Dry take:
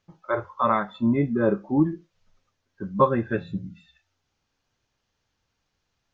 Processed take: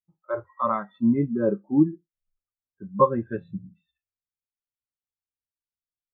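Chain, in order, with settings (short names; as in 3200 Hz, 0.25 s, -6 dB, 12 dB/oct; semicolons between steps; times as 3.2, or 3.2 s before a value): 0.46–0.98 whine 1900 Hz -49 dBFS; spectral expander 1.5:1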